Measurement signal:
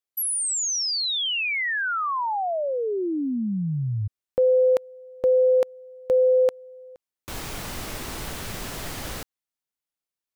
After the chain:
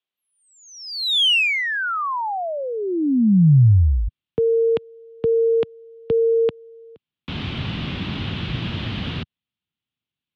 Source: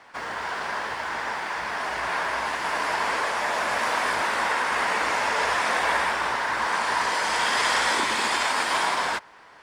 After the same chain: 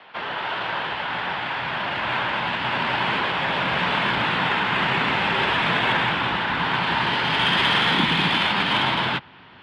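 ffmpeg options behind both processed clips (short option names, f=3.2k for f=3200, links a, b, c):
-af "highpass=f=160:t=q:w=0.5412,highpass=f=160:t=q:w=1.307,lowpass=f=3.5k:t=q:w=0.5176,lowpass=f=3.5k:t=q:w=0.7071,lowpass=f=3.5k:t=q:w=1.932,afreqshift=-54,aexciter=amount=1.6:drive=9.3:freq=2.7k,asubboost=boost=8:cutoff=190,volume=3dB"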